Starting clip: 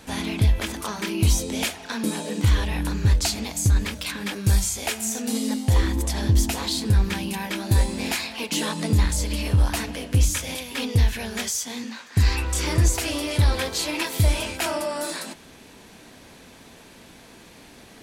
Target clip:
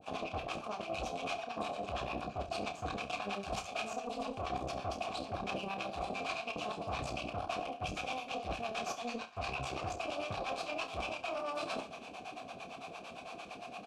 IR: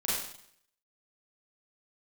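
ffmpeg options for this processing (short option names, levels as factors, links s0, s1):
-filter_complex "[0:a]acrossover=split=550[s0][s1];[s0]aeval=exprs='val(0)*(1-1/2+1/2*cos(2*PI*6.8*n/s))':c=same[s2];[s1]aeval=exprs='val(0)*(1-1/2-1/2*cos(2*PI*6.8*n/s))':c=same[s3];[s2][s3]amix=inputs=2:normalize=0,acrossover=split=5700[s4][s5];[s5]acompressor=threshold=0.00447:ratio=4:attack=1:release=60[s6];[s4][s6]amix=inputs=2:normalize=0,highshelf=f=5000:g=2.5,asplit=2[s7][s8];[s8]asoftclip=type=tanh:threshold=0.0376,volume=0.299[s9];[s7][s9]amix=inputs=2:normalize=0,aeval=exprs='0.178*(cos(1*acos(clip(val(0)/0.178,-1,1)))-cos(1*PI/2))+0.0631*(cos(6*acos(clip(val(0)/0.178,-1,1)))-cos(6*PI/2))':c=same,asplit=3[s10][s11][s12];[s10]bandpass=f=730:t=q:w=8,volume=1[s13];[s11]bandpass=f=1090:t=q:w=8,volume=0.501[s14];[s12]bandpass=f=2440:t=q:w=8,volume=0.355[s15];[s13][s14][s15]amix=inputs=3:normalize=0,bass=f=250:g=10,treble=f=4000:g=6,areverse,acompressor=threshold=0.00316:ratio=16,areverse,atempo=1.3,lowpass=9100,aecho=1:1:30|68:0.355|0.168,volume=5.62"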